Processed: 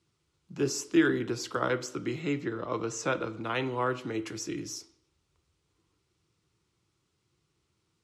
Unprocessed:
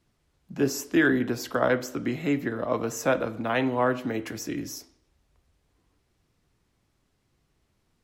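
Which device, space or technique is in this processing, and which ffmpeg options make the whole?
car door speaker: -filter_complex "[0:a]asettb=1/sr,asplit=3[link_01][link_02][link_03];[link_01]atrim=end=2.204[link_04];[link_02]atrim=start=2.2:end=3.43,asetpts=PTS-STARTPTS,afade=type=in:duration=0.004:curve=qsin,afade=type=out:start_time=1.226:duration=0.004:curve=qsin,lowpass=7700[link_05];[link_03]atrim=start=3.426[link_06];[link_04][link_05]acrossfade=duration=0.004:curve1=hsin:curve2=qsin[link_07];[link_07][link_06]acrossfade=duration=0.004:curve1=qsin:curve2=hsin,highpass=100,equalizer=frequency=330:width_type=q:width=4:gain=6,equalizer=frequency=750:width_type=q:width=4:gain=-3,equalizer=frequency=1400:width_type=q:width=4:gain=7,lowpass=frequency=9500:width=0.5412,lowpass=frequency=9500:width=1.3066,equalizer=frequency=250:width_type=o:width=0.67:gain=-11,equalizer=frequency=630:width_type=o:width=0.67:gain=-9,equalizer=frequency=1600:width_type=o:width=0.67:gain=-10"

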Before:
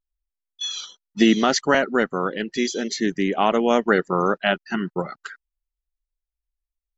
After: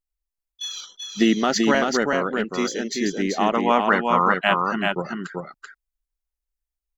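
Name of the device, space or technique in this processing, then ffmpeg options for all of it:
exciter from parts: -filter_complex "[0:a]asettb=1/sr,asplit=3[link_01][link_02][link_03];[link_01]atrim=end=3.544[link_04];[link_02]atrim=start=3.54:end=4.54,asetpts=PTS-STARTPTS,afade=type=in:duration=0.004:curve=qsin,afade=type=out:start_time=0.996:duration=0.004:curve=qsin,equalizer=frequency=400:width_type=o:width=0.67:gain=-7,equalizer=frequency=1000:width_type=o:width=0.67:gain=10,equalizer=frequency=2500:width_type=o:width=0.67:gain=6,equalizer=frequency=6300:width_type=o:width=0.67:gain=-11[link_05];[link_03]atrim=start=4.536[link_06];[link_04][link_05]acrossfade=duration=0.004:curve1=hsin:curve2=qsin[link_07];[link_07][link_06]acrossfade=duration=0.004:curve1=qsin:curve2=hsin,aecho=1:1:385:0.668,asplit=2[link_08][link_09];[link_09]highpass=3500,asoftclip=type=tanh:threshold=-32dB,highpass=2100,volume=-8dB[link_10];[link_08][link_10]amix=inputs=2:normalize=0,volume=-2dB"

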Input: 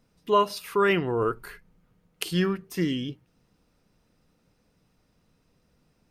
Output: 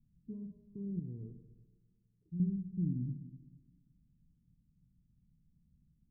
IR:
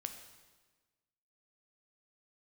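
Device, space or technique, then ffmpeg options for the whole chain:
club heard from the street: -filter_complex "[0:a]alimiter=limit=-17.5dB:level=0:latency=1,lowpass=frequency=190:width=0.5412,lowpass=frequency=190:width=1.3066[link_01];[1:a]atrim=start_sample=2205[link_02];[link_01][link_02]afir=irnorm=-1:irlink=0,asettb=1/sr,asplit=3[link_03][link_04][link_05];[link_03]atrim=end=0.994[link_06];[link_04]atrim=start=0.99:end=2.4,asetpts=PTS-STARTPTS,afade=type=in:duration=0.004:curve=qsin,afade=type=out:start_time=1.406:duration=0.004:curve=qsin,lowshelf=frequency=270:gain=-11[link_07];[link_05]atrim=start=2.396[link_08];[link_06][link_07]acrossfade=duration=0.004:curve1=hsin:curve2=qsin[link_09];[link_09][link_08]acrossfade=duration=0.004:curve1=qsin:curve2=hsin,volume=1.5dB"

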